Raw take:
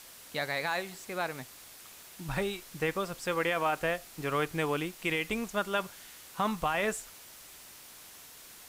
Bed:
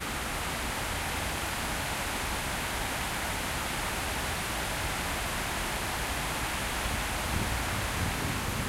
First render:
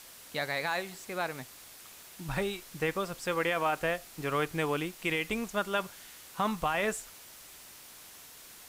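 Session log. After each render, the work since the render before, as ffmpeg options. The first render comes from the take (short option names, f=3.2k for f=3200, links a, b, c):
-af anull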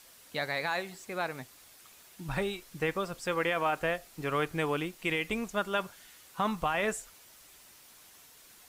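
-af "afftdn=nr=6:nf=-51"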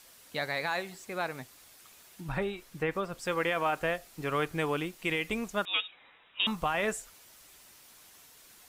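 -filter_complex "[0:a]asettb=1/sr,asplit=3[a][b][c];[a]atrim=end=2.214[d];[b]atrim=start=2.21:end=3.19,asetpts=PTS-STARTPTS,afade=t=in:d=0.004:c=qsin,afade=t=out:st=0.976:d=0.004:c=qsin,acrossover=split=3000[e][f];[f]acompressor=threshold=-55dB:ratio=4:attack=1:release=60[g];[e][g]amix=inputs=2:normalize=0[h];[c]atrim=start=3.186[i];[d][h]acrossfade=d=0.004:c1=hsin:c2=qsin[j];[j][i]acrossfade=d=0.004:c1=qsin:c2=hsin,asettb=1/sr,asplit=3[k][l][m];[k]atrim=end=5.654[n];[l]atrim=start=5.65:end=6.47,asetpts=PTS-STARTPTS,afade=t=in:d=0.004:c=qsin,afade=t=out:st=0.816:d=0.004:c=qsin,lowpass=f=3.3k:t=q:w=0.5098,lowpass=f=3.3k:t=q:w=0.6013,lowpass=f=3.3k:t=q:w=0.9,lowpass=f=3.3k:t=q:w=2.563,afreqshift=-3900[o];[m]atrim=start=6.466[p];[n][o]acrossfade=d=0.004:c1=hsin:c2=qsin[q];[q][p]acrossfade=d=0.004:c1=qsin:c2=hsin"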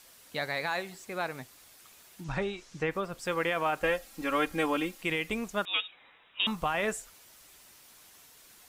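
-filter_complex "[0:a]asettb=1/sr,asplit=3[a][b][c];[a]atrim=end=2.244[d];[b]atrim=start=2.24:end=2.89,asetpts=PTS-STARTPTS,afade=t=in:d=0.004:c=qsin,afade=t=out:st=0.646:d=0.004:c=qsin,lowpass=f=6.4k:t=q:w=2.3[e];[c]atrim=start=2.886[f];[d][e]acrossfade=d=0.004:c1=hsin:c2=qsin[g];[g][f]acrossfade=d=0.004:c1=qsin:c2=hsin,asettb=1/sr,asplit=3[h][i][j];[h]atrim=end=3.834[k];[i]atrim=start=3.83:end=5.02,asetpts=PTS-STARTPTS,afade=t=in:d=0.004:c=qsin,afade=t=out:st=1.186:d=0.004:c=qsin,aecho=1:1:3.7:0.93,atrim=end_sample=52479[l];[j]atrim=start=5.016[m];[k][l]acrossfade=d=0.004:c1=hsin:c2=qsin[n];[n][m]acrossfade=d=0.004:c1=qsin:c2=hsin"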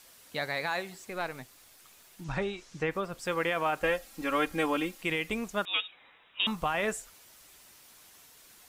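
-filter_complex "[0:a]asettb=1/sr,asplit=3[a][b][c];[a]atrim=end=1.104[d];[b]atrim=start=1.1:end=2.22,asetpts=PTS-STARTPTS,afade=t=in:d=0.004:c=qsin,afade=t=out:st=1.116:d=0.004:c=qsin,aeval=exprs='if(lt(val(0),0),0.708*val(0),val(0))':c=same[e];[c]atrim=start=2.216[f];[d][e]acrossfade=d=0.004:c1=hsin:c2=qsin[g];[g][f]acrossfade=d=0.004:c1=qsin:c2=hsin"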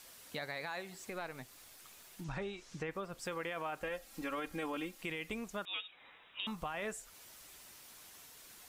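-af "alimiter=limit=-22dB:level=0:latency=1:release=12,acompressor=threshold=-44dB:ratio=2"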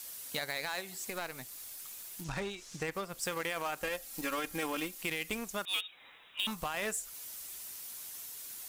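-filter_complex "[0:a]asplit=2[a][b];[b]acrusher=bits=5:mix=0:aa=0.5,volume=-8dB[c];[a][c]amix=inputs=2:normalize=0,crystalizer=i=2.5:c=0"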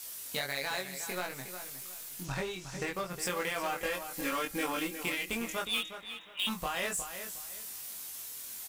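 -filter_complex "[0:a]asplit=2[a][b];[b]adelay=22,volume=-2.5dB[c];[a][c]amix=inputs=2:normalize=0,asplit=2[d][e];[e]adelay=361,lowpass=f=4.9k:p=1,volume=-9.5dB,asplit=2[f][g];[g]adelay=361,lowpass=f=4.9k:p=1,volume=0.27,asplit=2[h][i];[i]adelay=361,lowpass=f=4.9k:p=1,volume=0.27[j];[d][f][h][j]amix=inputs=4:normalize=0"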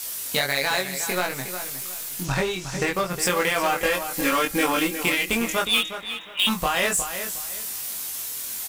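-af "volume=11.5dB"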